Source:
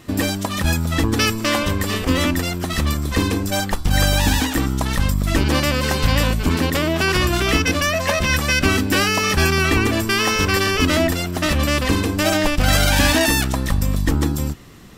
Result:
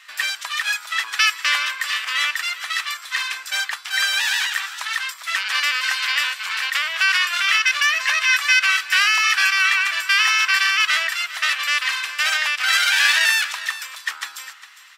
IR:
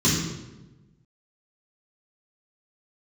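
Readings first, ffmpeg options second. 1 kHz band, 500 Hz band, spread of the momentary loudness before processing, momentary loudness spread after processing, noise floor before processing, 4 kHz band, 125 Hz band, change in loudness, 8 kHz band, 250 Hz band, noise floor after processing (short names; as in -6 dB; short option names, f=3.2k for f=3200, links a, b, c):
-3.0 dB, under -20 dB, 5 LU, 10 LU, -26 dBFS, +2.5 dB, under -40 dB, 0.0 dB, -2.0 dB, under -40 dB, -41 dBFS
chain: -filter_complex "[0:a]highpass=f=1.5k:w=0.5412,highpass=f=1.5k:w=1.3066,aemphasis=mode=reproduction:type=75kf,asplit=2[a][b];[b]aecho=0:1:405:0.178[c];[a][c]amix=inputs=2:normalize=0,volume=8.5dB"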